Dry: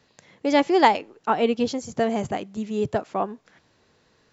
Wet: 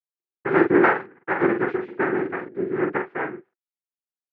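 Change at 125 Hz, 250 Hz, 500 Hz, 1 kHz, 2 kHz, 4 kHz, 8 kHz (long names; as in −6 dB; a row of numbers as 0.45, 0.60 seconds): +1.5 dB, +1.5 dB, +1.0 dB, −3.5 dB, +6.5 dB, below −15 dB, can't be measured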